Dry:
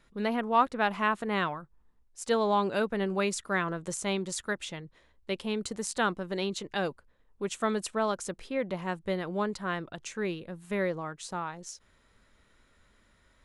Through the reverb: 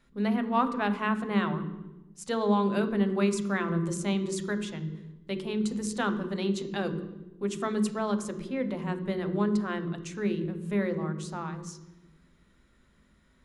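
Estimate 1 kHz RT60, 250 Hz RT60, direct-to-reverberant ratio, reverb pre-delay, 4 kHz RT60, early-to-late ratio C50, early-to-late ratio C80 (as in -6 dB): 0.90 s, 1.4 s, 7.0 dB, 3 ms, 0.80 s, 10.0 dB, 11.0 dB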